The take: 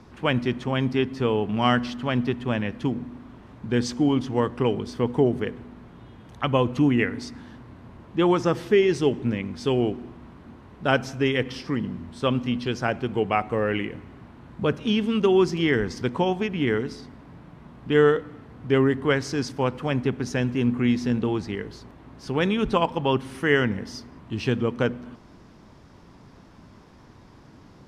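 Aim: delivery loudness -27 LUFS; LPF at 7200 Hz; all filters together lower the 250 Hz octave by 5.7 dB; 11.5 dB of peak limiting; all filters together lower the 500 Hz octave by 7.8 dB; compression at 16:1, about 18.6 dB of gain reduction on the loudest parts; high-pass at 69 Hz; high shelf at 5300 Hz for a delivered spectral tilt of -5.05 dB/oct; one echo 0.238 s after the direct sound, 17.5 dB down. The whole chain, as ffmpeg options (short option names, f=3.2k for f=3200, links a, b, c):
-af "highpass=69,lowpass=7.2k,equalizer=f=250:t=o:g=-4.5,equalizer=f=500:t=o:g=-8.5,highshelf=f=5.3k:g=5,acompressor=threshold=-37dB:ratio=16,alimiter=level_in=9.5dB:limit=-24dB:level=0:latency=1,volume=-9.5dB,aecho=1:1:238:0.133,volume=18dB"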